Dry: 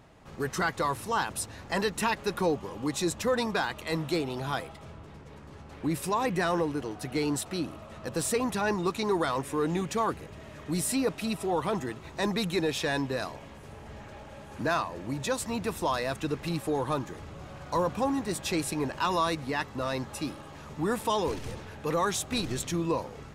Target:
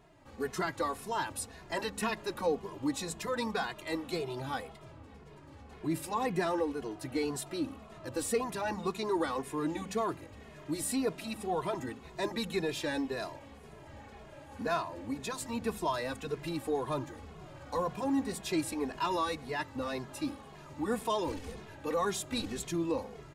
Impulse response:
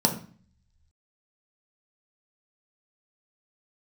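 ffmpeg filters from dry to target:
-filter_complex "[0:a]asplit=2[s0][s1];[1:a]atrim=start_sample=2205,asetrate=52920,aresample=44100[s2];[s1][s2]afir=irnorm=-1:irlink=0,volume=0.0398[s3];[s0][s3]amix=inputs=2:normalize=0,asplit=2[s4][s5];[s5]adelay=2.4,afreqshift=-1.9[s6];[s4][s6]amix=inputs=2:normalize=1,volume=0.75"

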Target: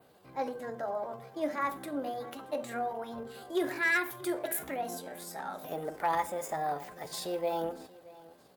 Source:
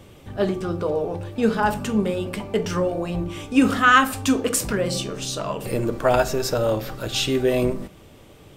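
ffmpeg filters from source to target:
-af "asoftclip=type=hard:threshold=0.355,highpass=f=560:p=1,equalizer=f=3300:t=o:w=2.8:g=-10,aecho=1:1:627|1254:0.0944|0.0227,asetrate=58866,aresample=44100,atempo=0.749154,adynamicequalizer=threshold=0.00251:dfrequency=5800:dqfactor=1.4:tfrequency=5800:tqfactor=1.4:attack=5:release=100:ratio=0.375:range=2:mode=cutabove:tftype=bell,volume=0.501"

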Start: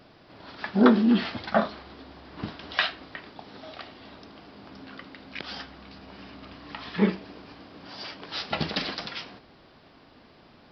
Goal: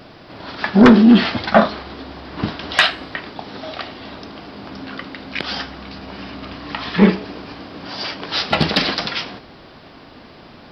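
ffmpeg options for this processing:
-af "aeval=exprs='0.631*sin(PI/2*2.24*val(0)/0.631)':c=same,bandreject=f=421.8:t=h:w=4,bandreject=f=843.6:t=h:w=4,bandreject=f=1265.4:t=h:w=4,bandreject=f=1687.2:t=h:w=4,bandreject=f=2109:t=h:w=4,bandreject=f=2530.8:t=h:w=4,bandreject=f=2952.6:t=h:w=4,bandreject=f=3374.4:t=h:w=4,bandreject=f=3796.2:t=h:w=4,bandreject=f=4218:t=h:w=4,bandreject=f=4639.8:t=h:w=4,bandreject=f=5061.6:t=h:w=4,bandreject=f=5483.4:t=h:w=4,bandreject=f=5905.2:t=h:w=4,bandreject=f=6327:t=h:w=4,bandreject=f=6748.8:t=h:w=4,bandreject=f=7170.6:t=h:w=4,bandreject=f=7592.4:t=h:w=4,bandreject=f=8014.2:t=h:w=4,bandreject=f=8436:t=h:w=4,bandreject=f=8857.8:t=h:w=4,bandreject=f=9279.6:t=h:w=4,bandreject=f=9701.4:t=h:w=4,bandreject=f=10123.2:t=h:w=4,bandreject=f=10545:t=h:w=4,bandreject=f=10966.8:t=h:w=4,bandreject=f=11388.6:t=h:w=4,bandreject=f=11810.4:t=h:w=4,bandreject=f=12232.2:t=h:w=4,bandreject=f=12654:t=h:w=4,bandreject=f=13075.8:t=h:w=4,volume=1.19"

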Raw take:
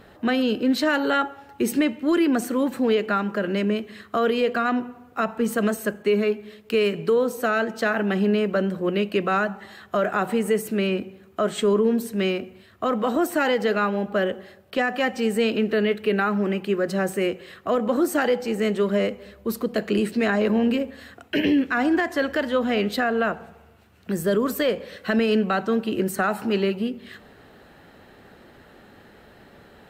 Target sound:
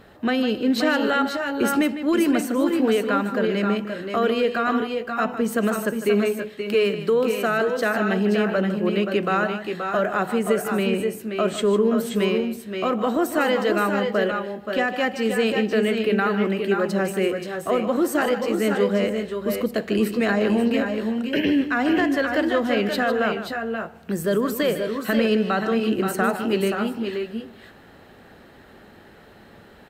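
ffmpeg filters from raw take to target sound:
-af "aecho=1:1:153|527|545:0.266|0.473|0.266"

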